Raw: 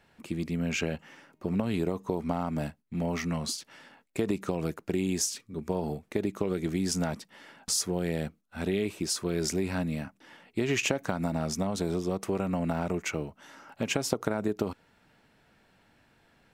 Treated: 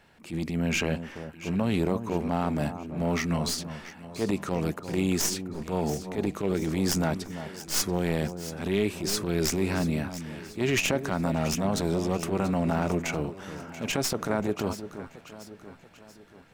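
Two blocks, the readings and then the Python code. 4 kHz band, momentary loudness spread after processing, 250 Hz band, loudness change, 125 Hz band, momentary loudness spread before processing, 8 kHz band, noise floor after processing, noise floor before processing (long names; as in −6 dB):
+3.0 dB, 12 LU, +3.0 dB, +2.5 dB, +3.5 dB, 9 LU, +1.5 dB, −52 dBFS, −67 dBFS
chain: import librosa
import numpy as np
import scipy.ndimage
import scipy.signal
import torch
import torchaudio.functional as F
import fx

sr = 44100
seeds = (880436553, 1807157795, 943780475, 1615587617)

y = fx.tracing_dist(x, sr, depth_ms=0.051)
y = fx.transient(y, sr, attack_db=-12, sustain_db=1)
y = fx.echo_alternate(y, sr, ms=342, hz=1300.0, feedback_pct=67, wet_db=-10.5)
y = F.gain(torch.from_numpy(y), 4.5).numpy()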